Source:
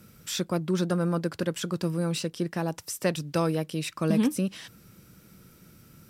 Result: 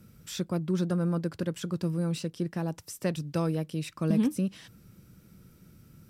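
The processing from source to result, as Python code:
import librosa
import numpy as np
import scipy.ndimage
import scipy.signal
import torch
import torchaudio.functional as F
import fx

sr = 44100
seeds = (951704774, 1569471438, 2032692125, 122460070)

y = fx.low_shelf(x, sr, hz=290.0, db=9.0)
y = F.gain(torch.from_numpy(y), -7.0).numpy()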